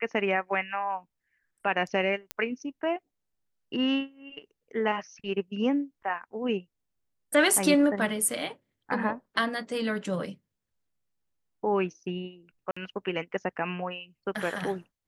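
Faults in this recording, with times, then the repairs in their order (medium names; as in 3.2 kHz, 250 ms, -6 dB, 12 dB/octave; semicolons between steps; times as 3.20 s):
2.31 s: pop -14 dBFS
12.71–12.77 s: dropout 55 ms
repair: de-click; interpolate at 12.71 s, 55 ms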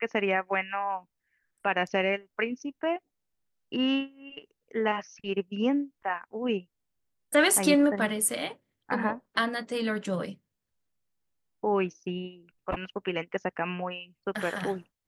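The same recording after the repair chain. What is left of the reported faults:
nothing left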